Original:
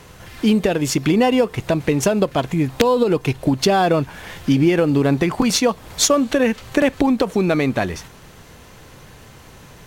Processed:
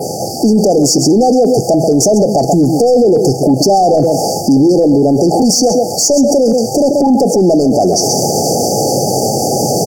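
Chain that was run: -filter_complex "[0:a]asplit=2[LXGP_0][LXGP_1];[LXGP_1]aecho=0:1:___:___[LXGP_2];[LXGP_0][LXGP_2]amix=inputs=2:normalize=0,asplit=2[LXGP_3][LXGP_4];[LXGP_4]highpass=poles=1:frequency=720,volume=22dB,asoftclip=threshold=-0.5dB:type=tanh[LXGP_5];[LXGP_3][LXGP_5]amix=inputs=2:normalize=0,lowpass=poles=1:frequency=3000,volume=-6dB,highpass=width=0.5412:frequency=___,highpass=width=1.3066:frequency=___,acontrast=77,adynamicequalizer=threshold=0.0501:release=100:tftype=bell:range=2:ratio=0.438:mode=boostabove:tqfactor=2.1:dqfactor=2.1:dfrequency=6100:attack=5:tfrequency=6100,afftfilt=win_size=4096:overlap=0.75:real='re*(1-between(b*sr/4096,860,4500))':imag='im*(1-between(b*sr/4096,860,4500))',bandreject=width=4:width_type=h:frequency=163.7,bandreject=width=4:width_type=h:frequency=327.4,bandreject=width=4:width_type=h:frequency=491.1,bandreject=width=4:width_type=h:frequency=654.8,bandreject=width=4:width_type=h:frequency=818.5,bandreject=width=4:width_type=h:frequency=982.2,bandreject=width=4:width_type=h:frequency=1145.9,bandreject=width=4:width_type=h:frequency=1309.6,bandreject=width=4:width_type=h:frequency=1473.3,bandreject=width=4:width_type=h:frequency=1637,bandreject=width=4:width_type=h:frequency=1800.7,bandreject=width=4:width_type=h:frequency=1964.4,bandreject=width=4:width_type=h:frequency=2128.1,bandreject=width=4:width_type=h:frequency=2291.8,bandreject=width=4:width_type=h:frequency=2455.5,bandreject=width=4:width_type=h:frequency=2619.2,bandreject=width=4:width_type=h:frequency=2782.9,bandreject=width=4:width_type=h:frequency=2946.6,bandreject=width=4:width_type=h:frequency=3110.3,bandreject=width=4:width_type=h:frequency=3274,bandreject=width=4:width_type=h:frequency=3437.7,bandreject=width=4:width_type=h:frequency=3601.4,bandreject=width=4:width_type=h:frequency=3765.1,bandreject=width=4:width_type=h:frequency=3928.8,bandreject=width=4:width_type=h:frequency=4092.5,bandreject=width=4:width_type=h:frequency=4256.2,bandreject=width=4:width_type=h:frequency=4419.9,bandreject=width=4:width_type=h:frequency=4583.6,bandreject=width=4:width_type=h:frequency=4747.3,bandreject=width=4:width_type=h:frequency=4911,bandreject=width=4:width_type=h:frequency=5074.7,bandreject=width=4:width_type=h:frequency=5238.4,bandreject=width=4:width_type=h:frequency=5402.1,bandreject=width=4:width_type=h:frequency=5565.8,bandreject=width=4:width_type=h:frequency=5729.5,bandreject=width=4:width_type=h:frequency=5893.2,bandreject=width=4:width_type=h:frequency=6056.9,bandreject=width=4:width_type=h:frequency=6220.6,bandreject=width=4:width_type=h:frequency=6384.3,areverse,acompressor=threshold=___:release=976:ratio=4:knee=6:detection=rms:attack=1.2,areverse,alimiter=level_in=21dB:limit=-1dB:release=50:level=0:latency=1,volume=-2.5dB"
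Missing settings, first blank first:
133, 0.168, 110, 110, -18dB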